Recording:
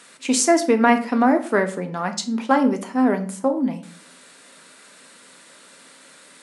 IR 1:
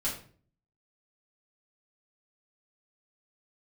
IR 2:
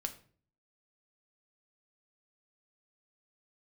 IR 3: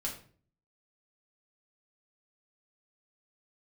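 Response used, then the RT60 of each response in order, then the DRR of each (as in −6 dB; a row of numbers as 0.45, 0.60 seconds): 2; 0.45, 0.45, 0.45 seconds; −7.5, 6.0, −3.0 decibels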